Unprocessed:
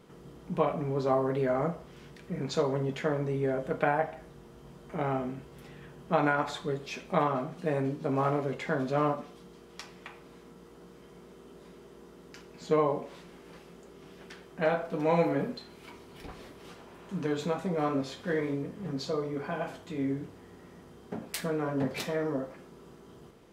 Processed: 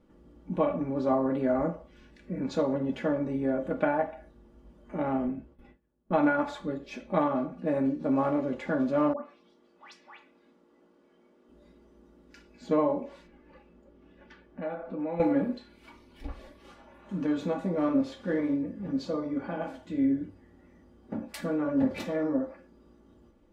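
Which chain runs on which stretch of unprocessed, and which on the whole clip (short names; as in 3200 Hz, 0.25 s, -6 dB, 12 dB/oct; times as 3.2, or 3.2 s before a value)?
5.27–7.75 gate with hold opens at -36 dBFS, closes at -46 dBFS + mismatched tape noise reduction decoder only
9.13–11.49 Bessel high-pass 340 Hz + high shelf 10000 Hz -11 dB + dispersion highs, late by 0.135 s, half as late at 1800 Hz
13.27–15.2 LPF 2700 Hz 6 dB/oct + compressor 2:1, threshold -38 dBFS
whole clip: spectral noise reduction 9 dB; tilt -2.5 dB/oct; comb 3.5 ms, depth 72%; gain -2.5 dB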